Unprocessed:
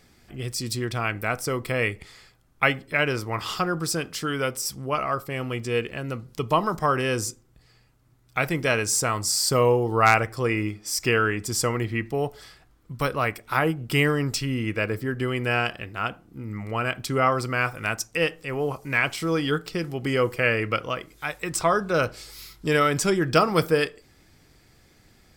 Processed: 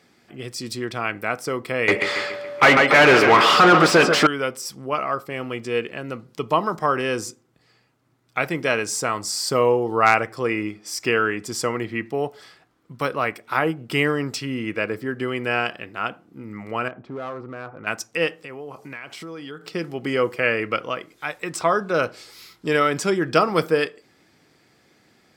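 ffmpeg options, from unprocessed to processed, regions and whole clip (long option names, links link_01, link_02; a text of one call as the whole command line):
ffmpeg -i in.wav -filter_complex "[0:a]asettb=1/sr,asplit=3[link_01][link_02][link_03];[link_01]atrim=end=1.884[link_04];[link_02]atrim=start=1.88:end=4.27,asetpts=PTS-STARTPTS,afade=type=in:duration=0.004:curve=qsin,afade=type=out:start_time=2.386:duration=0.004:curve=qsin,asplit=2[link_05][link_06];[link_06]adelay=141,lowpass=frequency=5000:poles=1,volume=-13.5dB,asplit=2[link_07][link_08];[link_08]adelay=141,lowpass=frequency=5000:poles=1,volume=0.49,asplit=2[link_09][link_10];[link_10]adelay=141,lowpass=frequency=5000:poles=1,volume=0.49,asplit=2[link_11][link_12];[link_12]adelay=141,lowpass=frequency=5000:poles=1,volume=0.49,asplit=2[link_13][link_14];[link_14]adelay=141,lowpass=frequency=5000:poles=1,volume=0.49[link_15];[link_05][link_07][link_09][link_11][link_13][link_15]amix=inputs=6:normalize=0,atrim=end_sample=105399,asplit=2[link_16][link_17];[link_17]highpass=frequency=720:poles=1,volume=34dB,asoftclip=type=tanh:threshold=-5dB[link_18];[link_16][link_18]amix=inputs=2:normalize=0,lowpass=frequency=2100:poles=1,volume=-6dB,aeval=exprs='val(0)+0.0251*sin(2*PI*580*n/s)':channel_layout=same[link_19];[link_03]atrim=start=4.266[link_20];[link_04][link_19]acrossfade=duration=0.004:curve1=hsin:curve2=qsin[link_21];[link_21][link_20]acrossfade=duration=0.004:curve1=qsin:curve2=hsin,asettb=1/sr,asplit=3[link_22][link_23][link_24];[link_22]atrim=end=16.884[link_25];[link_23]atrim=start=16.88:end=17.87,asetpts=PTS-STARTPTS,afade=type=in:duration=0.004:curve=qsin,afade=type=out:start_time=0.986:duration=0.004:curve=qsin,lowpass=1000,acompressor=threshold=-33dB:ratio=2:attack=3.2:release=140:knee=1:detection=peak,volume=28dB,asoftclip=hard,volume=-28dB[link_26];[link_24]atrim=start=17.866[link_27];[link_25][link_26]acrossfade=duration=0.004:curve1=hsin:curve2=qsin[link_28];[link_28][link_27]acrossfade=duration=0.004:curve1=qsin:curve2=hsin,asettb=1/sr,asplit=3[link_29][link_30][link_31];[link_29]atrim=end=18.424[link_32];[link_30]atrim=start=18.42:end=19.66,asetpts=PTS-STARTPTS,afade=type=in:duration=0.004:curve=qsin,afade=type=out:start_time=1.236:duration=0.004:curve=qsin,highpass=44,acompressor=threshold=-33dB:ratio=8:attack=3.2:release=140:knee=1:detection=peak[link_33];[link_31]atrim=start=19.656[link_34];[link_32][link_33]acrossfade=duration=0.004:curve1=hsin:curve2=qsin[link_35];[link_35][link_34]acrossfade=duration=0.004:curve1=qsin:curve2=hsin,highpass=190,highshelf=frequency=6800:gain=-10,volume=2dB" out.wav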